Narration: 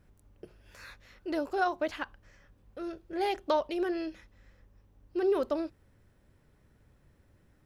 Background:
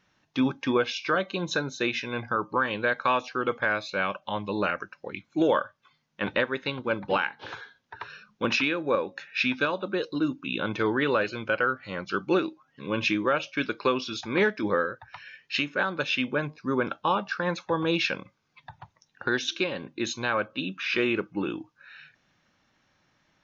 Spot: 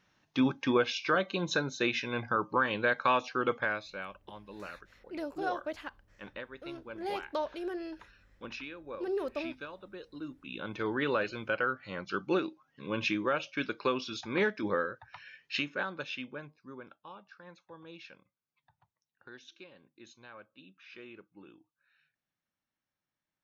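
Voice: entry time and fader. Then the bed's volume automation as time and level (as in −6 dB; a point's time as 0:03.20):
3.85 s, −6.0 dB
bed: 0:03.53 −2.5 dB
0:04.19 −17.5 dB
0:10.04 −17.5 dB
0:11.05 −5.5 dB
0:15.64 −5.5 dB
0:17.01 −24 dB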